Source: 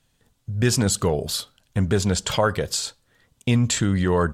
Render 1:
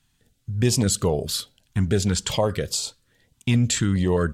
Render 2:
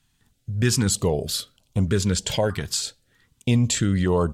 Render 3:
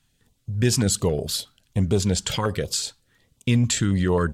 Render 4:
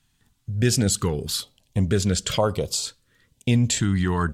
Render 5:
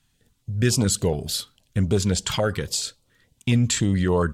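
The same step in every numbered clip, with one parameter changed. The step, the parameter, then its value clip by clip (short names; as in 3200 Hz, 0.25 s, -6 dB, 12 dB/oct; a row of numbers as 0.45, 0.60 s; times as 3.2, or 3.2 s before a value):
stepped notch, rate: 4.8, 3.2, 11, 2.1, 7.1 Hz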